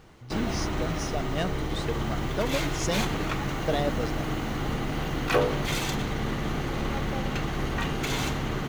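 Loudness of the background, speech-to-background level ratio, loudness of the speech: -30.0 LUFS, -3.5 dB, -33.5 LUFS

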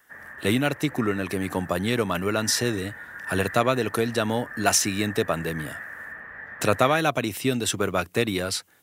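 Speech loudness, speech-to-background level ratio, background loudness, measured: -25.0 LUFS, 13.5 dB, -38.5 LUFS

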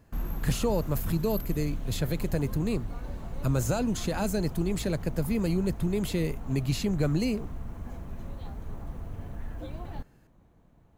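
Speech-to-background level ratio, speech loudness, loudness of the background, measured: 10.0 dB, -30.0 LUFS, -40.0 LUFS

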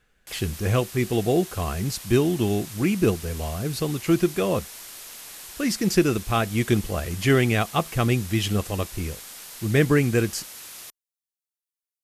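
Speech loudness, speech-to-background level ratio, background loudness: -24.0 LUFS, 14.0 dB, -38.0 LUFS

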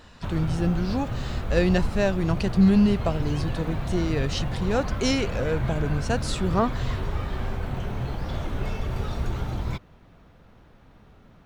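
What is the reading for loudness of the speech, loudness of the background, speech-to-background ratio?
-25.5 LUFS, -31.0 LUFS, 5.5 dB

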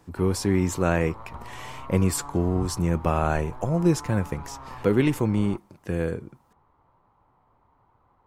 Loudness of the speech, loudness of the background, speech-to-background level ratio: -25.0 LUFS, -42.5 LUFS, 17.5 dB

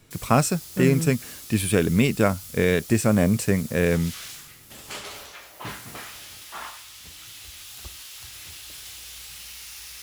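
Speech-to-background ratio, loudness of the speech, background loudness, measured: 15.5 dB, -22.5 LUFS, -38.0 LUFS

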